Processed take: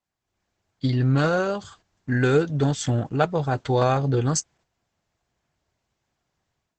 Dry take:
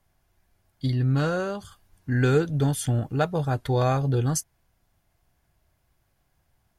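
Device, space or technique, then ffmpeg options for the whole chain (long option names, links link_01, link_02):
video call: -af "highpass=frequency=170:poles=1,dynaudnorm=framelen=200:gausssize=3:maxgain=12dB,agate=range=-8dB:threshold=-46dB:ratio=16:detection=peak,volume=-5.5dB" -ar 48000 -c:a libopus -b:a 12k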